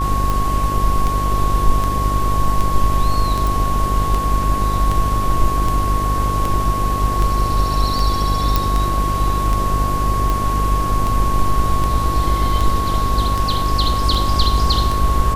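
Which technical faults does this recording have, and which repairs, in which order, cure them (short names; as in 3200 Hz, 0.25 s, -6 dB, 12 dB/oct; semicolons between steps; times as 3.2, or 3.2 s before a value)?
buzz 50 Hz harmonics 16 -21 dBFS
tick 78 rpm
tone 1100 Hz -20 dBFS
3.47 pop
8.56 pop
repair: de-click; de-hum 50 Hz, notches 16; notch 1100 Hz, Q 30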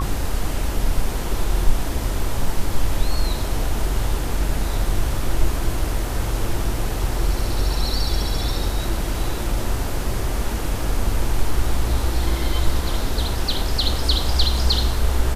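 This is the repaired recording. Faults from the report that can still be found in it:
none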